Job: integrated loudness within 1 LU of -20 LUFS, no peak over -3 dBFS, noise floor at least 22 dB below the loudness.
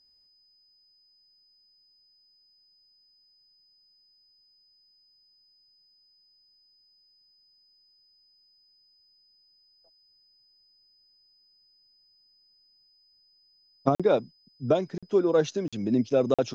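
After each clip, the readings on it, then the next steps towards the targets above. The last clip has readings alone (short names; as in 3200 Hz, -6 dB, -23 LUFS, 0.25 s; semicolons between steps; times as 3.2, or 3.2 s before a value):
dropouts 4; longest dropout 46 ms; steady tone 5000 Hz; tone level -61 dBFS; loudness -26.0 LUFS; peak -7.0 dBFS; loudness target -20.0 LUFS
-> interpolate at 13.95/14.98/15.68/16.34, 46 ms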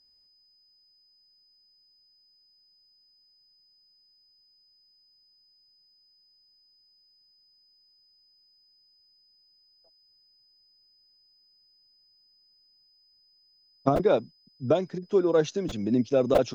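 dropouts 0; steady tone 5000 Hz; tone level -61 dBFS
-> notch 5000 Hz, Q 30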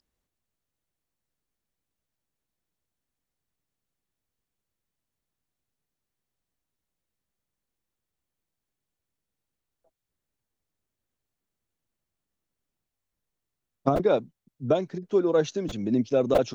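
steady tone none; loudness -25.5 LUFS; peak -7.0 dBFS; loudness target -20.0 LUFS
-> gain +5.5 dB; limiter -3 dBFS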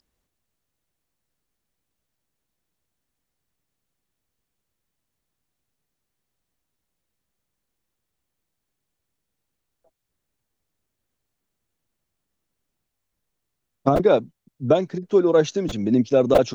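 loudness -20.0 LUFS; peak -3.0 dBFS; noise floor -81 dBFS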